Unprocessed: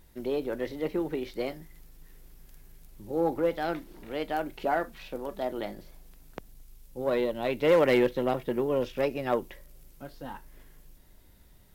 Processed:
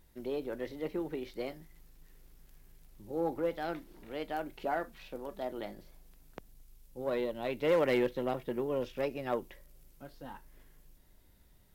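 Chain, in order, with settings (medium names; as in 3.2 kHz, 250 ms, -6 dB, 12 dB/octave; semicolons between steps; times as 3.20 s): 1.59–3.04 s: dead-time distortion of 0.07 ms; trim -6 dB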